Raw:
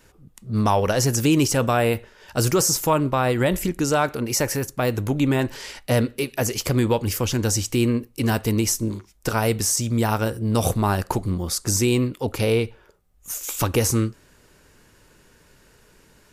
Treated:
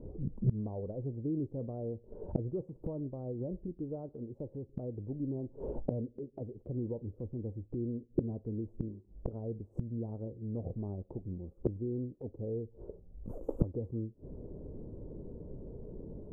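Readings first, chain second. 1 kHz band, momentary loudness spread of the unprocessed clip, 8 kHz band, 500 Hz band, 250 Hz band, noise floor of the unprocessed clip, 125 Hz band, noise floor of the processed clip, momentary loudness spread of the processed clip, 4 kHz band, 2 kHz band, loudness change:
-30.5 dB, 7 LU, under -40 dB, -16.5 dB, -15.0 dB, -56 dBFS, -14.0 dB, -62 dBFS, 12 LU, under -40 dB, under -40 dB, -17.5 dB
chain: inverse Chebyshev low-pass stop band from 1.8 kHz, stop band 60 dB; inverted gate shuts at -30 dBFS, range -28 dB; trim +12 dB

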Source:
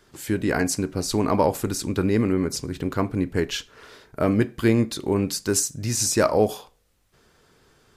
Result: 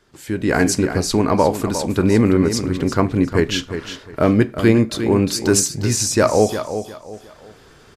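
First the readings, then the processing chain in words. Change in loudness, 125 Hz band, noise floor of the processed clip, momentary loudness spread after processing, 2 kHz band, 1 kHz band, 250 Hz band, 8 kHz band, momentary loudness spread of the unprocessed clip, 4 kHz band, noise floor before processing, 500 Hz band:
+5.5 dB, +6.5 dB, -47 dBFS, 12 LU, +6.5 dB, +5.5 dB, +6.5 dB, +4.5 dB, 8 LU, +6.0 dB, -63 dBFS, +6.0 dB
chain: treble shelf 11 kHz -10 dB; feedback delay 356 ms, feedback 24%, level -10 dB; level rider gain up to 12 dB; trim -1 dB

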